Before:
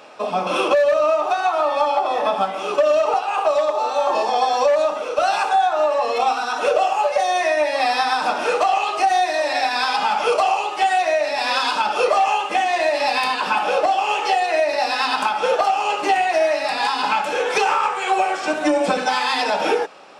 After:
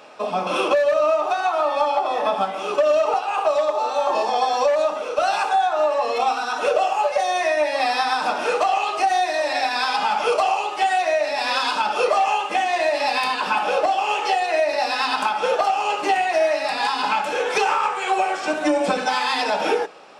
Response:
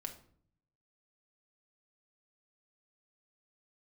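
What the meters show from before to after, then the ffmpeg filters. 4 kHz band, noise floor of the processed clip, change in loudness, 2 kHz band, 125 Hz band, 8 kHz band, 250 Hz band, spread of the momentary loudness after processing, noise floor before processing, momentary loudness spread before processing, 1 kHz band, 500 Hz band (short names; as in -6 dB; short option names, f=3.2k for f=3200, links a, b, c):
-1.5 dB, -28 dBFS, -1.5 dB, -1.5 dB, n/a, -1.5 dB, -1.5 dB, 3 LU, -27 dBFS, 3 LU, -1.5 dB, -1.5 dB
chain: -filter_complex "[0:a]asplit=2[a][b];[1:a]atrim=start_sample=2205[c];[b][c]afir=irnorm=-1:irlink=0,volume=-11dB[d];[a][d]amix=inputs=2:normalize=0,volume=-3dB"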